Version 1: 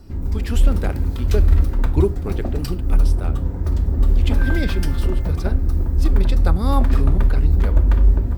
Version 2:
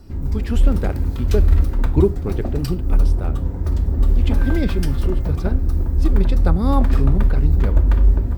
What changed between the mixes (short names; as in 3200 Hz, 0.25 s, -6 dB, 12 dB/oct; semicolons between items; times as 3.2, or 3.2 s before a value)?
speech: add tilt -2 dB/oct; second sound -6.0 dB